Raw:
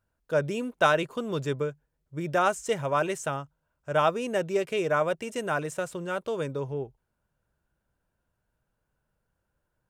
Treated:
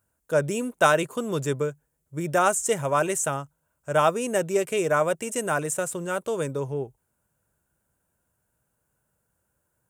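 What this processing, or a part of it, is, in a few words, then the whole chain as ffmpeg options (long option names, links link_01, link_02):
budget condenser microphone: -af "highpass=64,highshelf=frequency=6100:width_type=q:width=1.5:gain=9.5,volume=3dB"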